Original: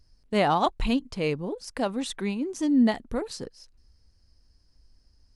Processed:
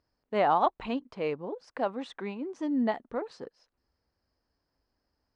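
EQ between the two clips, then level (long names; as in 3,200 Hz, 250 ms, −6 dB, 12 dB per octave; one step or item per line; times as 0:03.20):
resonant band-pass 860 Hz, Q 0.71
high-frequency loss of the air 58 metres
0.0 dB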